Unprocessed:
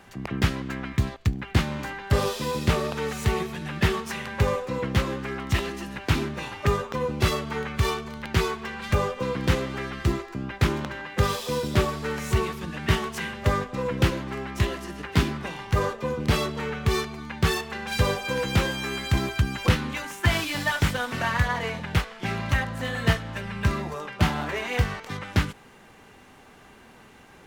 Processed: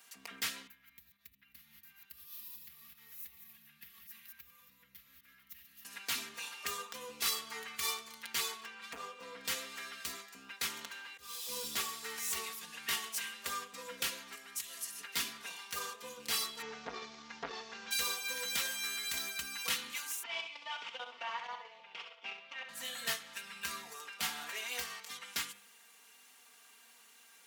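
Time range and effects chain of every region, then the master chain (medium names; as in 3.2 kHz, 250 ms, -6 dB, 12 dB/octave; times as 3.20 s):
0.67–5.85 s: chunks repeated in reverse 126 ms, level -6 dB + FFT filter 130 Hz 0 dB, 240 Hz -13 dB, 450 Hz -29 dB, 1.1 kHz -21 dB, 1.9 kHz -14 dB, 5.4 kHz -19 dB, 8.5 kHz -23 dB, 13 kHz -2 dB + compression 2:1, threshold -40 dBFS
8.65–9.45 s: low-pass 2.1 kHz 6 dB/octave + transformer saturation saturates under 490 Hz
11.08–11.76 s: bass shelf 170 Hz +10 dB + slow attack 489 ms
14.35–15.01 s: peaking EQ 11 kHz +9.5 dB 1.8 oct + compression, threshold -33 dBFS + three bands expanded up and down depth 40%
16.62–17.91 s: one-bit delta coder 32 kbps, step -36 dBFS + tilt shelf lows +7 dB, about 1.4 kHz + transformer saturation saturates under 770 Hz
20.23–22.69 s: level held to a coarse grid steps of 14 dB + cabinet simulation 300–4100 Hz, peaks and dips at 350 Hz +4 dB, 570 Hz +6 dB, 880 Hz +6 dB, 1.7 kHz -8 dB, 2.7 kHz +4 dB, 4.1 kHz -8 dB + feedback delay 66 ms, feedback 26%, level -7.5 dB
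whole clip: differentiator; comb 4.3 ms, depth 79%; de-hum 100.8 Hz, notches 39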